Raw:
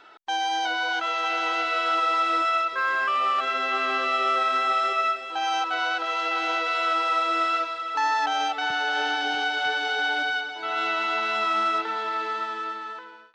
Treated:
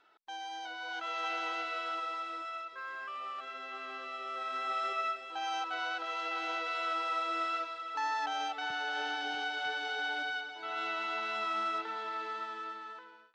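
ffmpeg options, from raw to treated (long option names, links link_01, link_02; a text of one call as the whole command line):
ffmpeg -i in.wav -af "volume=-1.5dB,afade=type=in:start_time=0.78:duration=0.46:silence=0.446684,afade=type=out:start_time=1.24:duration=1.12:silence=0.375837,afade=type=in:start_time=4.28:duration=0.58:silence=0.421697" out.wav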